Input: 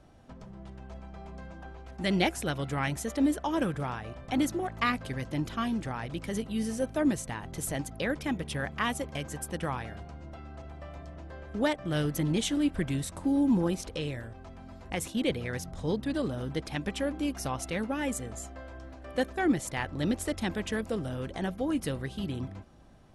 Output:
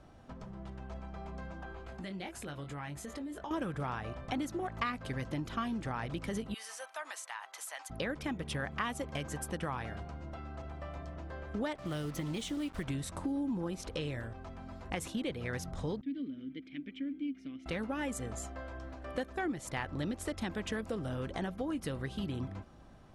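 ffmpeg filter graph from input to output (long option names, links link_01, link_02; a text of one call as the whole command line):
ffmpeg -i in.wav -filter_complex "[0:a]asettb=1/sr,asplit=3[link_01][link_02][link_03];[link_01]atrim=end=1.644[link_04];[link_02]atrim=start=1.64:end=3.51,asetpts=PTS-STARTPTS,afade=type=in:duration=0.004:curve=qsin,afade=type=out:start_time=1.866:duration=0.004:curve=qsin,asplit=2[link_05][link_06];[link_06]adelay=21,volume=-6dB[link_07];[link_05][link_07]amix=inputs=2:normalize=0,atrim=end_sample=82467,acompressor=threshold=-40dB:ratio=6:attack=3.2:release=140:knee=1:detection=peak,bandreject=frequency=5700:width=9.7[link_08];[link_03]atrim=start=3.506[link_09];[link_04][link_08]acrossfade=duration=0.004:curve1=hsin:curve2=qsin[link_10];[link_10][link_09]acrossfade=duration=0.004:curve1=qsin:curve2=hsin,asettb=1/sr,asplit=3[link_11][link_12][link_13];[link_11]atrim=end=6.544[link_14];[link_12]atrim=start=6.54:end=7.9,asetpts=PTS-STARTPTS,afade=type=in:duration=0.004:curve=qsin,afade=type=out:start_time=1.356:duration=0.004:curve=qsin,highpass=frequency=830:width=0.5412,highpass=frequency=830:width=1.3066,acompressor=threshold=-39dB:ratio=2.5:attack=3.2:release=140:knee=1:detection=peak[link_15];[link_13]atrim=start=7.896[link_16];[link_14][link_15]acrossfade=duration=0.004:curve1=hsin:curve2=qsin[link_17];[link_17][link_16]acrossfade=duration=0.004:curve1=qsin:curve2=hsin,asettb=1/sr,asplit=3[link_18][link_19][link_20];[link_18]atrim=end=11.754[link_21];[link_19]atrim=start=11.75:end=12.88,asetpts=PTS-STARTPTS,afade=type=in:duration=0.004:curve=qsin,afade=type=out:start_time=1.126:duration=0.004:curve=qsin,bandreject=frequency=1600:width=9.9,acrossover=split=660|5900[link_22][link_23][link_24];[link_22]acompressor=threshold=-33dB:ratio=4[link_25];[link_23]acompressor=threshold=-41dB:ratio=4[link_26];[link_24]acompressor=threshold=-46dB:ratio=4[link_27];[link_25][link_26][link_27]amix=inputs=3:normalize=0,acrusher=bits=7:mix=0:aa=0.5[link_28];[link_20]atrim=start=12.876[link_29];[link_21][link_28]acrossfade=duration=0.004:curve1=hsin:curve2=qsin[link_30];[link_30][link_29]acrossfade=duration=0.004:curve1=qsin:curve2=hsin,asettb=1/sr,asplit=3[link_31][link_32][link_33];[link_31]atrim=end=16.014[link_34];[link_32]atrim=start=16.01:end=17.66,asetpts=PTS-STARTPTS,afade=type=in:duration=0.004:curve=qsin,afade=type=out:start_time=1.646:duration=0.004:curve=qsin,asplit=3[link_35][link_36][link_37];[link_35]bandpass=frequency=270:width_type=q:width=8,volume=0dB[link_38];[link_36]bandpass=frequency=2290:width_type=q:width=8,volume=-6dB[link_39];[link_37]bandpass=frequency=3010:width_type=q:width=8,volume=-9dB[link_40];[link_38][link_39][link_40]amix=inputs=3:normalize=0,highshelf=frequency=7500:gain=-11[link_41];[link_33]atrim=start=17.656[link_42];[link_34][link_41]acrossfade=duration=0.004:curve1=hsin:curve2=qsin[link_43];[link_43][link_42]acrossfade=duration=0.004:curve1=qsin:curve2=hsin,highshelf=frequency=9500:gain=-6.5,acompressor=threshold=-33dB:ratio=6,equalizer=frequency=1200:width_type=o:width=0.77:gain=3" out.wav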